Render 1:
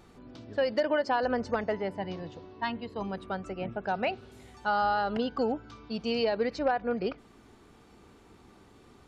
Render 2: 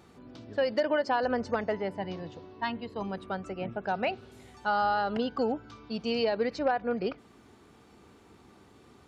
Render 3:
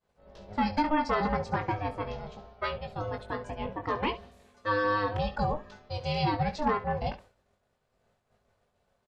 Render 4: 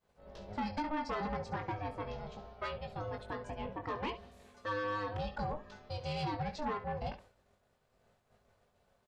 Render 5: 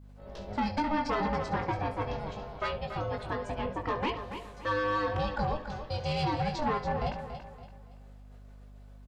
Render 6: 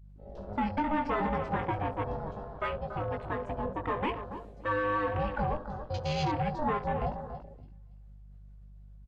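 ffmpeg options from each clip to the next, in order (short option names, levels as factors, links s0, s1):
-af "highpass=64"
-af "aeval=exprs='val(0)*sin(2*PI*310*n/s)':c=same,agate=range=0.0224:threshold=0.00447:ratio=3:detection=peak,aecho=1:1:20|69:0.473|0.178,volume=1.26"
-af "acompressor=threshold=0.00447:ratio=1.5,asoftclip=type=tanh:threshold=0.0355,volume=1.12"
-filter_complex "[0:a]aeval=exprs='val(0)+0.00158*(sin(2*PI*50*n/s)+sin(2*PI*2*50*n/s)/2+sin(2*PI*3*50*n/s)/3+sin(2*PI*4*50*n/s)/4+sin(2*PI*5*50*n/s)/5)':c=same,asplit=2[s0][s1];[s1]aecho=0:1:283|566|849|1132:0.335|0.117|0.041|0.0144[s2];[s0][s2]amix=inputs=2:normalize=0,volume=2.11"
-af "afwtdn=0.00891"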